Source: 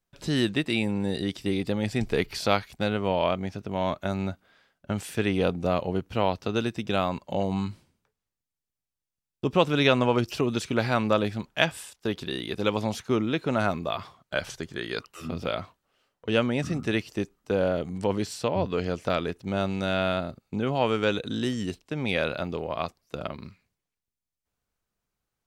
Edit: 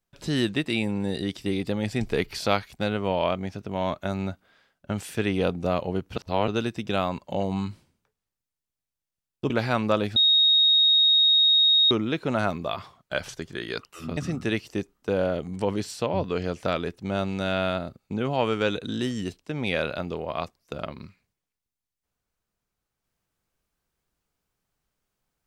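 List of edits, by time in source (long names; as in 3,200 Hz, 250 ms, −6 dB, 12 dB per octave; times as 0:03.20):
0:06.16–0:06.48: reverse
0:09.50–0:10.71: remove
0:11.37–0:13.12: beep over 3,750 Hz −15.5 dBFS
0:15.38–0:16.59: remove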